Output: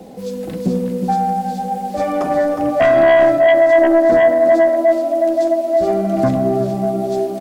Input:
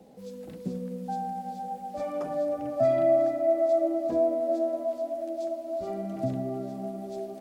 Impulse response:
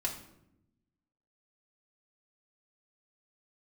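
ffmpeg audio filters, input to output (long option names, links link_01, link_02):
-filter_complex "[0:a]aecho=1:1:364:0.376,aeval=exprs='0.251*(cos(1*acos(clip(val(0)/0.251,-1,1)))-cos(1*PI/2))+0.0891*(cos(5*acos(clip(val(0)/0.251,-1,1)))-cos(5*PI/2))':channel_layout=same,asplit=2[link_01][link_02];[1:a]atrim=start_sample=2205[link_03];[link_02][link_03]afir=irnorm=-1:irlink=0,volume=-10dB[link_04];[link_01][link_04]amix=inputs=2:normalize=0,volume=5dB"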